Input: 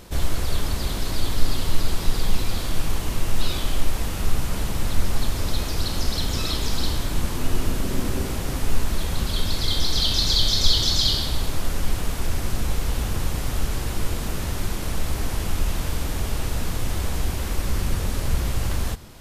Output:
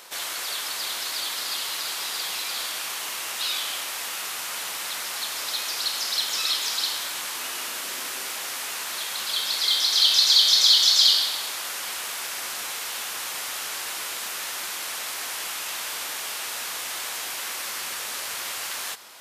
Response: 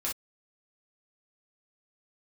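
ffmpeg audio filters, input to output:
-filter_complex "[0:a]highpass=900,acrossover=split=1400[link_01][link_02];[link_01]alimiter=level_in=16.5dB:limit=-24dB:level=0:latency=1:release=81,volume=-16.5dB[link_03];[link_03][link_02]amix=inputs=2:normalize=0,volume=5dB"

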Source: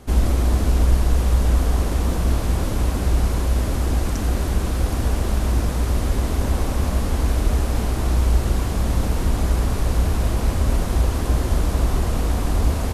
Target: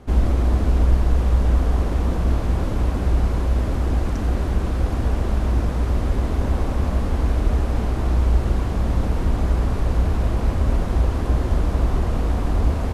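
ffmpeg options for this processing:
ffmpeg -i in.wav -af "lowpass=frequency=2100:poles=1" out.wav

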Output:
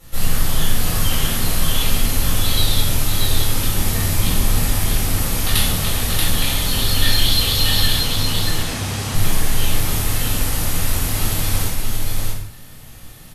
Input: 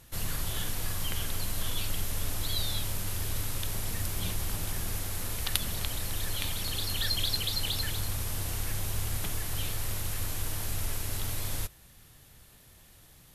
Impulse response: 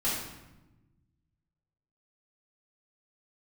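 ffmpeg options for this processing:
-filter_complex "[0:a]asettb=1/sr,asplit=3[link_01][link_02][link_03];[link_01]atrim=end=7.974[link_04];[link_02]atrim=start=7.97:end=9.14,asetpts=PTS-STARTPTS,afade=type=in:duration=0.004:curve=qsin,afade=type=out:start_time=1.166:duration=0.004:curve=qsin,highpass=110,lowpass=7800[link_05];[link_03]atrim=start=9.136[link_06];[link_04][link_05]acrossfade=duration=0.004:curve1=hsin:curve2=qsin[link_07];[link_07][link_06]acrossfade=duration=0.004:curve1=qsin:curve2=hsin,aecho=1:1:633:0.668[link_08];[1:a]atrim=start_sample=2205,afade=type=out:start_time=0.25:duration=0.01,atrim=end_sample=11466[link_09];[link_08][link_09]afir=irnorm=-1:irlink=0,volume=4.5dB"

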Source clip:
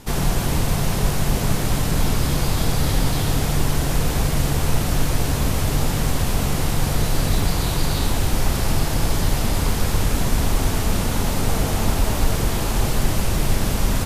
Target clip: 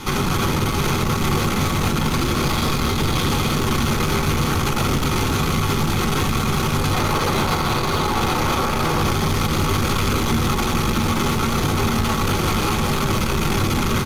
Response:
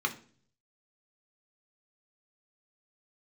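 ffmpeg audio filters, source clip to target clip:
-filter_complex "[0:a]asettb=1/sr,asplit=3[link_01][link_02][link_03];[link_01]atrim=end=6.934[link_04];[link_02]atrim=start=6.93:end=9.01,asetpts=PTS-STARTPTS,afade=type=in:duration=0.004:curve=qsin,afade=type=out:start_time=2.076:duration=0.004:curve=qsin,equalizer=frequency=740:width_type=o:width=1.7:gain=8.5[link_05];[link_03]atrim=start=9.006[link_06];[link_04][link_05]acrossfade=duration=0.004:curve1=hsin:curve2=qsin[link_07];[link_07][link_06]acrossfade=duration=0.004:curve1=qsin:curve2=hsin,asplit=7[link_08][link_09][link_10][link_11][link_12][link_13][link_14];[link_09]adelay=263,afreqshift=-57,volume=-6.5dB[link_15];[link_10]adelay=526,afreqshift=-114,volume=-12.3dB[link_16];[link_11]adelay=789,afreqshift=-171,volume=-18.2dB[link_17];[link_12]adelay=1052,afreqshift=-228,volume=-24dB[link_18];[link_13]adelay=1315,afreqshift=-285,volume=-29.9dB[link_19];[link_14]adelay=1578,afreqshift=-342,volume=-35.7dB[link_20];[link_08][link_15][link_16][link_17][link_18][link_19][link_20]amix=inputs=7:normalize=0,asoftclip=type=tanh:threshold=-21dB[link_21];[1:a]atrim=start_sample=2205[link_22];[link_21][link_22]afir=irnorm=-1:irlink=0,alimiter=limit=-18.5dB:level=0:latency=1:release=146,volume=8dB"

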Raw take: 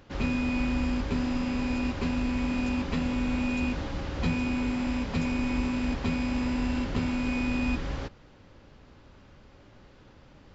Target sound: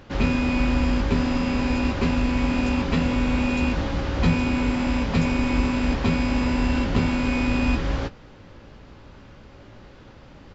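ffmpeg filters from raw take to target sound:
ffmpeg -i in.wav -filter_complex "[0:a]highshelf=frequency=6200:gain=-4,asplit=2[link_01][link_02];[link_02]adelay=18,volume=-10.5dB[link_03];[link_01][link_03]amix=inputs=2:normalize=0,volume=7.5dB" out.wav

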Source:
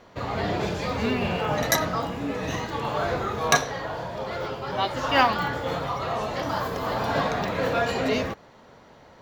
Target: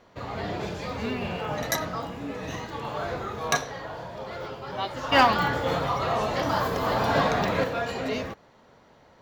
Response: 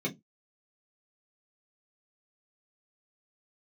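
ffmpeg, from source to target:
-filter_complex "[0:a]asettb=1/sr,asplit=3[link_01][link_02][link_03];[link_01]atrim=end=5.124[link_04];[link_02]atrim=start=5.12:end=7.64,asetpts=PTS-STARTPTS,afade=type=in:duration=0.004:curve=qsin,afade=type=out:start_time=2.516:duration=0.004:curve=qsin,acontrast=89[link_05];[link_03]atrim=start=7.636[link_06];[link_04][link_05]acrossfade=duration=0.004:curve1=hsin:curve2=qsin[link_07];[link_07][link_06]acrossfade=duration=0.004:curve1=qsin:curve2=hsin,volume=-5dB"

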